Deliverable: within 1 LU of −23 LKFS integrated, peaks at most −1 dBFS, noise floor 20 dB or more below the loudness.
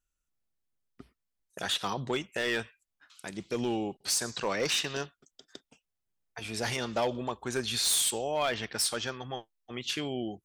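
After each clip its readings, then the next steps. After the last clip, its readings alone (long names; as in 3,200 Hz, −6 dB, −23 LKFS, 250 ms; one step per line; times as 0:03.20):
share of clipped samples 0.4%; peaks flattened at −22.5 dBFS; integrated loudness −31.0 LKFS; sample peak −22.5 dBFS; target loudness −23.0 LKFS
→ clipped peaks rebuilt −22.5 dBFS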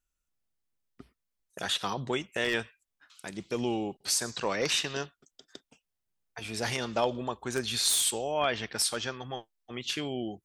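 share of clipped samples 0.0%; integrated loudness −30.5 LKFS; sample peak −13.5 dBFS; target loudness −23.0 LKFS
→ level +7.5 dB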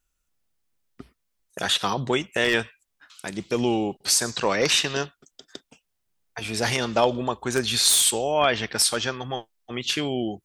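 integrated loudness −23.0 LKFS; sample peak −6.0 dBFS; background noise floor −77 dBFS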